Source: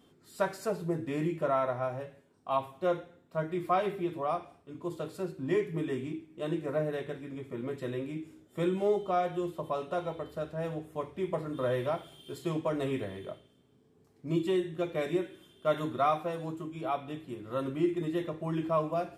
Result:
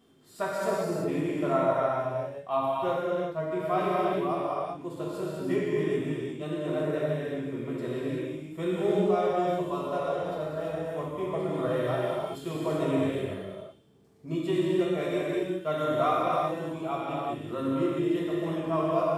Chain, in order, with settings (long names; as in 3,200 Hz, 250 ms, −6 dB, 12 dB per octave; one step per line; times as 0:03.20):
reverb whose tail is shaped and stops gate 410 ms flat, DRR −5.5 dB
level −2.5 dB